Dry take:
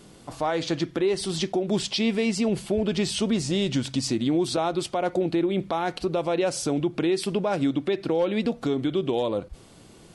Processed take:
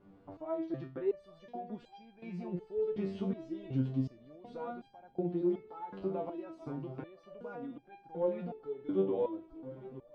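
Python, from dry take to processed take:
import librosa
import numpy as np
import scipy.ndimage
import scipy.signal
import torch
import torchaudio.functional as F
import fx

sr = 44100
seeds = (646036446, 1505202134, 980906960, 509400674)

y = scipy.signal.sosfilt(scipy.signal.butter(2, 1200.0, 'lowpass', fs=sr, output='sos'), x)
y = fx.echo_swing(y, sr, ms=1448, ratio=1.5, feedback_pct=50, wet_db=-15.0)
y = fx.resonator_held(y, sr, hz=2.7, low_hz=97.0, high_hz=800.0)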